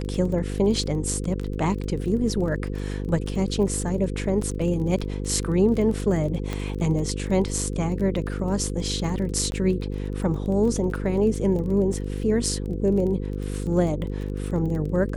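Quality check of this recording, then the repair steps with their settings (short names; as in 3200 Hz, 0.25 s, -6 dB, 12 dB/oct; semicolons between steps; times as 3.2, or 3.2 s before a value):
buzz 50 Hz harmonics 10 -29 dBFS
crackle 21/s -31 dBFS
6.53 pop -15 dBFS
9.51–9.52 gap 11 ms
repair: de-click; de-hum 50 Hz, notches 10; interpolate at 9.51, 11 ms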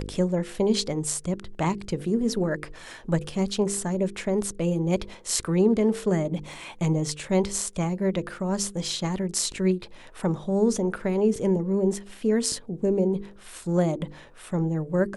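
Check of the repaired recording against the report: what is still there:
6.53 pop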